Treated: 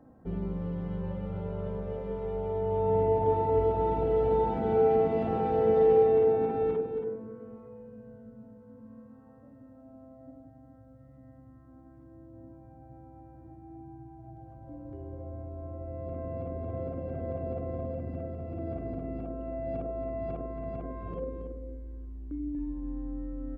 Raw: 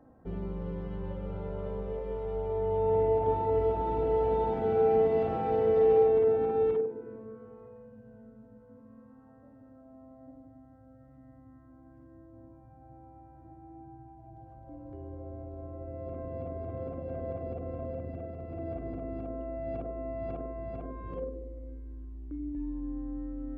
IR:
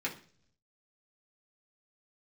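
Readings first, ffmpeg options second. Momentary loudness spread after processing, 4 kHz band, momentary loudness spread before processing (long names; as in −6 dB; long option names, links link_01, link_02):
23 LU, can't be measured, 20 LU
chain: -af "equalizer=frequency=180:width=0.99:gain=4.5,aecho=1:1:277:0.376"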